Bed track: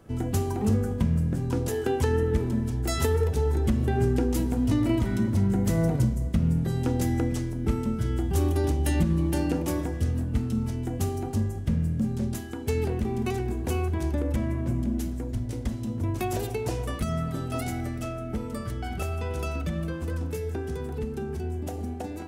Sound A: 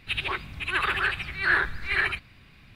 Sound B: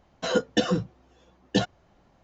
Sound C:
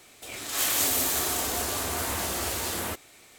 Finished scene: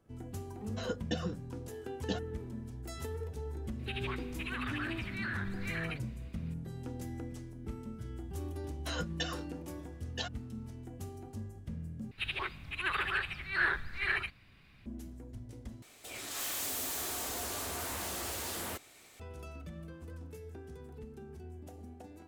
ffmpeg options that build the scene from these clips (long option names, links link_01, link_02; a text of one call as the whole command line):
ffmpeg -i bed.wav -i cue0.wav -i cue1.wav -i cue2.wav -filter_complex "[2:a]asplit=2[link_01][link_02];[1:a]asplit=2[link_03][link_04];[0:a]volume=-16dB[link_05];[link_03]acompressor=threshold=-28dB:ratio=6:attack=3.2:release=140:knee=1:detection=peak[link_06];[link_02]highpass=900[link_07];[3:a]asoftclip=type=tanh:threshold=-30dB[link_08];[link_05]asplit=3[link_09][link_10][link_11];[link_09]atrim=end=12.114[link_12];[link_04]atrim=end=2.75,asetpts=PTS-STARTPTS,volume=-7.5dB[link_13];[link_10]atrim=start=14.856:end=15.824[link_14];[link_08]atrim=end=3.38,asetpts=PTS-STARTPTS,volume=-4.5dB[link_15];[link_11]atrim=start=19.196[link_16];[link_01]atrim=end=2.23,asetpts=PTS-STARTPTS,volume=-13dB,afade=type=in:duration=0.004:curve=hsin,afade=type=out:start_time=2.226:duration=0.004:curve=hsin,adelay=540[link_17];[link_06]atrim=end=2.75,asetpts=PTS-STARTPTS,volume=-7.5dB,afade=type=in:duration=0.004:curve=hsin,afade=type=out:start_time=2.746:duration=0.004:curve=hsin,adelay=3790[link_18];[link_07]atrim=end=2.23,asetpts=PTS-STARTPTS,volume=-8dB,afade=type=in:duration=0.004:curve=hsin,afade=type=out:start_time=2.226:duration=0.004:curve=hsin,adelay=8630[link_19];[link_12][link_13]acrossfade=duration=0.004:curve1=hsin:curve2=hsin[link_20];[link_20][link_14]acrossfade=duration=0.004:curve1=hsin:curve2=hsin[link_21];[link_21][link_15]acrossfade=duration=0.004:curve1=hsin:curve2=hsin[link_22];[link_22][link_16]acrossfade=duration=0.004:curve1=hsin:curve2=hsin[link_23];[link_23][link_17][link_18][link_19]amix=inputs=4:normalize=0" out.wav